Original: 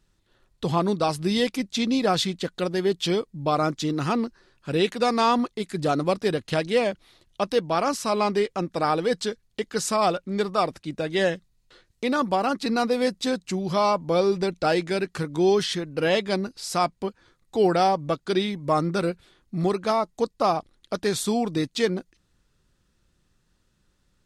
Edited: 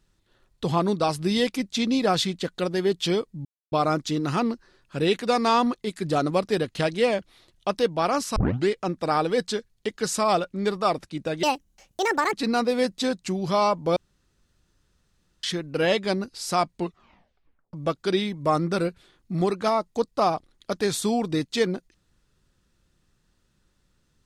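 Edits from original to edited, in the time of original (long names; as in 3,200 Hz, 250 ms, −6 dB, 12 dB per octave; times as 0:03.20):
0:03.45: splice in silence 0.27 s
0:08.09: tape start 0.32 s
0:11.16–0:12.56: play speed 155%
0:14.19–0:15.66: fill with room tone
0:16.96: tape stop 1.00 s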